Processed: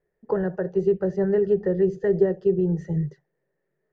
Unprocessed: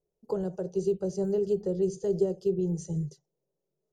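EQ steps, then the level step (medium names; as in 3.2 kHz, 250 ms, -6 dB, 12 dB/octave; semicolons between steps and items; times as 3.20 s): resonant low-pass 1.8 kHz, resonance Q 13; +6.0 dB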